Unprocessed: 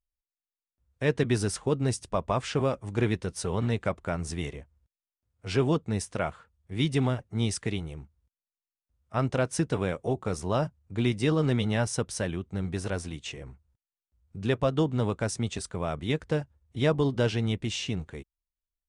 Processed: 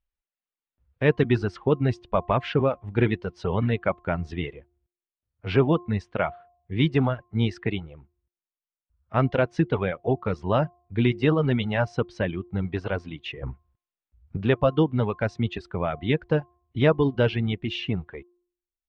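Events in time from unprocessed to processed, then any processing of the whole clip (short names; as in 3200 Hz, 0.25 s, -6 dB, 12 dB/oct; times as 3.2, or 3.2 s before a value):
13.43–14.37 gain +7.5 dB
whole clip: reverb removal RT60 1.4 s; LPF 3300 Hz 24 dB/oct; de-hum 353 Hz, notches 3; gain +5.5 dB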